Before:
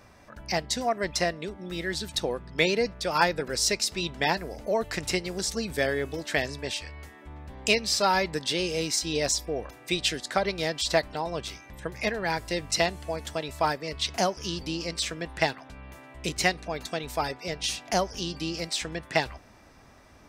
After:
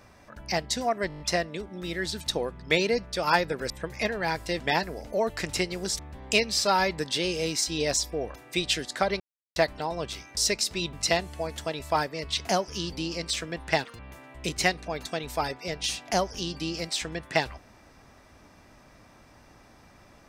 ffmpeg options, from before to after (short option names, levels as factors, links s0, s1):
-filter_complex "[0:a]asplit=16[s0][s1][s2][s3][s4][s5][s6][s7][s8][s9][s10][s11][s12][s13][s14][s15];[s0]atrim=end=1.102[s16];[s1]atrim=start=1.078:end=1.102[s17];[s2]atrim=start=1.078:end=1.102[s18];[s3]atrim=start=1.078:end=1.102[s19];[s4]atrim=start=1.078:end=1.102[s20];[s5]atrim=start=1.078:end=1.102[s21];[s6]atrim=start=1.078:end=3.582[s22];[s7]atrim=start=11.718:end=12.622[s23];[s8]atrim=start=4.138:end=5.532[s24];[s9]atrim=start=7.338:end=10.55,asetpts=PTS-STARTPTS,afade=t=out:st=3.208:d=0.004:c=hsin[s25];[s10]atrim=start=10.55:end=10.91,asetpts=PTS-STARTPTS,volume=0[s26];[s11]atrim=start=10.91:end=11.722,asetpts=PTS-STARTPTS,afade=t=in:d=0.004:c=hsin[s27];[s12]atrim=start=3.578:end=4.142[s28];[s13]atrim=start=12.618:end=15.544[s29];[s14]atrim=start=15.54:end=15.79,asetpts=PTS-STARTPTS,asetrate=78498,aresample=44100[s30];[s15]atrim=start=15.786[s31];[s16][s17]acrossfade=d=0.004:c1=hsin:c2=hsin[s32];[s32][s18]acrossfade=d=0.004:c1=hsin:c2=hsin[s33];[s33][s19]acrossfade=d=0.004:c1=hsin:c2=hsin[s34];[s34][s20]acrossfade=d=0.004:c1=hsin:c2=hsin[s35];[s35][s21]acrossfade=d=0.004:c1=hsin:c2=hsin[s36];[s36][s22]acrossfade=d=0.004:c1=hsin:c2=hsin[s37];[s37][s23]acrossfade=d=0.004:c1=hsin:c2=hsin[s38];[s38][s24]acrossfade=d=0.004:c1=hsin:c2=hsin[s39];[s25][s26][s27]concat=n=3:v=0:a=1[s40];[s39][s40]acrossfade=d=0.004:c1=hsin:c2=hsin[s41];[s41][s28]acrossfade=d=0.004:c1=hsin:c2=hsin[s42];[s42][s29]acrossfade=d=0.004:c1=hsin:c2=hsin[s43];[s43][s30]acrossfade=d=0.004:c1=hsin:c2=hsin[s44];[s44][s31]acrossfade=d=0.004:c1=hsin:c2=hsin"